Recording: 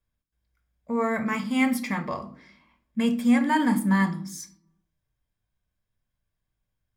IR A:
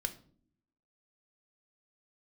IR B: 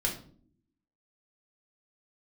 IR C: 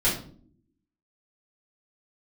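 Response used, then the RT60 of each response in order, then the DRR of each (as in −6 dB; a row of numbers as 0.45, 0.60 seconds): A; non-exponential decay, non-exponential decay, non-exponential decay; 8.0, −1.0, −9.5 decibels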